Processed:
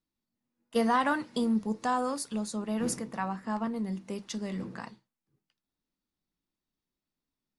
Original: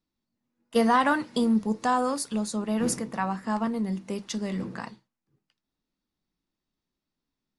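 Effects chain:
0:03.28–0:03.76: high-shelf EQ 4,800 Hz −5 dB
level −4.5 dB

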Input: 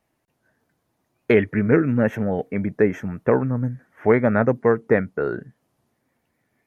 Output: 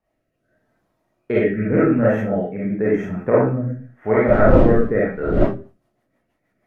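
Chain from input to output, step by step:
0:04.27–0:05.38: wind on the microphone 310 Hz −22 dBFS
convolution reverb RT60 0.35 s, pre-delay 10 ms, DRR −8.5 dB
rotating-speaker cabinet horn 0.85 Hz, later 6.3 Hz, at 0:04.85
high-shelf EQ 2,900 Hz −10.5 dB
level −3 dB

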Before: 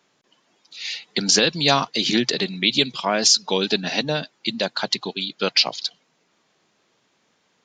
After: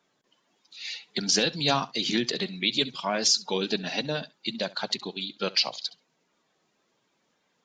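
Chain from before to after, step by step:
spectral magnitudes quantised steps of 15 dB
on a send: flutter between parallel walls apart 11.6 metres, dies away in 0.2 s
on the sum: level −6 dB

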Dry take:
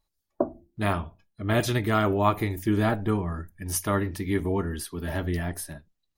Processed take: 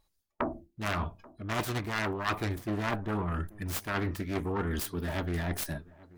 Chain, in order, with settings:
phase distortion by the signal itself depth 0.7 ms
dynamic equaliser 1,100 Hz, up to +6 dB, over −40 dBFS, Q 1.2
reversed playback
downward compressor 6 to 1, threshold −34 dBFS, peak gain reduction 19.5 dB
reversed playback
tape wow and flutter 27 cents
delay with a low-pass on its return 834 ms, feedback 32%, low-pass 1,800 Hz, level −22 dB
level +4.5 dB

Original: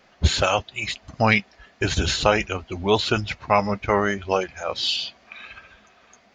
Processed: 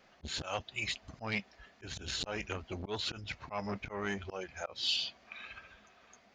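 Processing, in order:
volume swells 266 ms
saturating transformer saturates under 1,100 Hz
level −7 dB

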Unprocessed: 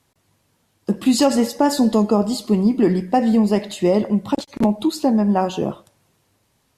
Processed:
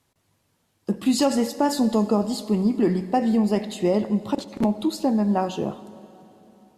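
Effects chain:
dense smooth reverb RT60 3.7 s, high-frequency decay 0.85×, DRR 15.5 dB
level −4.5 dB

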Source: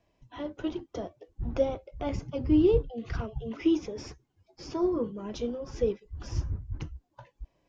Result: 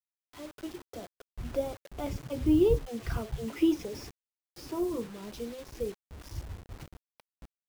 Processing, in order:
source passing by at 0:03.30, 5 m/s, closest 6 metres
bit reduction 8 bits

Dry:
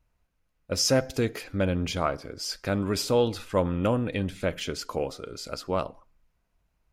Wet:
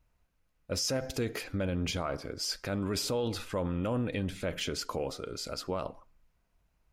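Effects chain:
brickwall limiter −23 dBFS, peak gain reduction 11 dB

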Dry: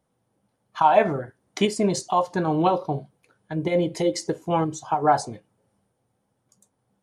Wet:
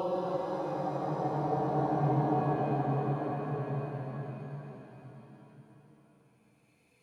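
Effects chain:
extreme stretch with random phases 17×, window 0.25 s, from 0:02.79
reverb with rising layers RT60 3.3 s, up +7 semitones, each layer −8 dB, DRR 3 dB
level −5 dB

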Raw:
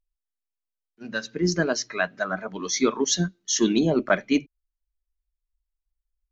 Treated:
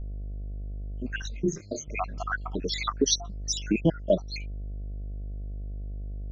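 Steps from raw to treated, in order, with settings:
time-frequency cells dropped at random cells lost 75%
hum with harmonics 50 Hz, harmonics 14, −48 dBFS −8 dB per octave
low-shelf EQ 71 Hz +12 dB
in parallel at 0 dB: downward compressor, threshold −36 dBFS, peak gain reduction 17.5 dB
0:01.22–0:01.88: on the sum: micro pitch shift up and down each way 37 cents

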